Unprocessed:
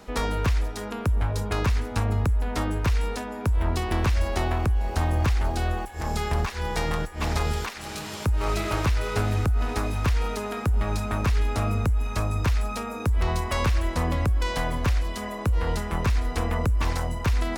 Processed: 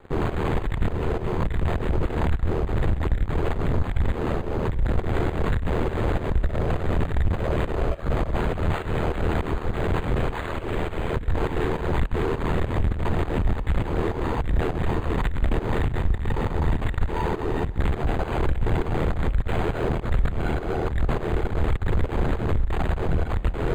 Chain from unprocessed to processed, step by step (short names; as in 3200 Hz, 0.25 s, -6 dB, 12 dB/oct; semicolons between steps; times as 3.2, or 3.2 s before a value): rattling part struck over -23 dBFS, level -25 dBFS; LPC vocoder at 8 kHz whisper; bell 550 Hz +11 dB 0.27 oct; fuzz box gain 37 dB, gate -45 dBFS; Schroeder reverb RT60 3 s, combs from 29 ms, DRR 16 dB; varispeed -26%; pump 102 bpm, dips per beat 2, -12 dB, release 0.189 s; ring modulator 40 Hz; low shelf 110 Hz +8 dB; decimation joined by straight lines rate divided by 8×; gain -7.5 dB